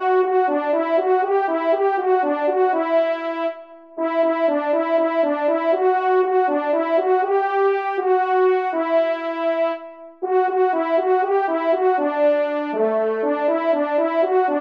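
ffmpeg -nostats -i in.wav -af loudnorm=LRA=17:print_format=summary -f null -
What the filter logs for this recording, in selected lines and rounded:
Input Integrated:    -19.5 LUFS
Input True Peak:      -8.0 dBTP
Input LRA:             1.5 LU
Input Threshold:     -29.6 LUFS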